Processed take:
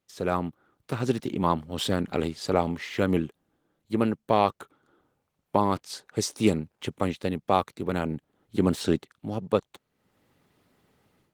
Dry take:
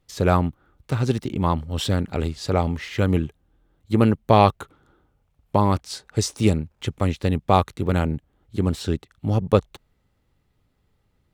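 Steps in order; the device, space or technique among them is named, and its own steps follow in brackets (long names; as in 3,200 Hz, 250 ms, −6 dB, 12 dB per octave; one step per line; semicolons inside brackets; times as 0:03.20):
video call (high-pass filter 180 Hz 12 dB per octave; automatic gain control gain up to 16 dB; level −7 dB; Opus 20 kbit/s 48,000 Hz)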